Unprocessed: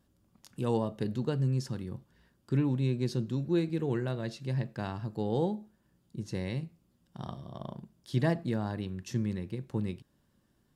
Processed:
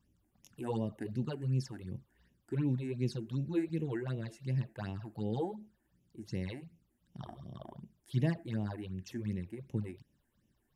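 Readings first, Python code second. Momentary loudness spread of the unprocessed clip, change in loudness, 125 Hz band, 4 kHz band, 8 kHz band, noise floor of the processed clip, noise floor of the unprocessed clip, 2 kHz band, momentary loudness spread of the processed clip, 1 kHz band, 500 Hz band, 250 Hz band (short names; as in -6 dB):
14 LU, -4.0 dB, -4.0 dB, -6.5 dB, n/a, -77 dBFS, -72 dBFS, -5.5 dB, 15 LU, -7.0 dB, -6.5 dB, -4.5 dB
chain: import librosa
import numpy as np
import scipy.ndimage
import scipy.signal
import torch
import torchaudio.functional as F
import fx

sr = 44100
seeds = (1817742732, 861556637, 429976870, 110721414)

y = fx.phaser_stages(x, sr, stages=8, low_hz=140.0, high_hz=1400.0, hz=2.7, feedback_pct=35)
y = F.gain(torch.from_numpy(y), -2.5).numpy()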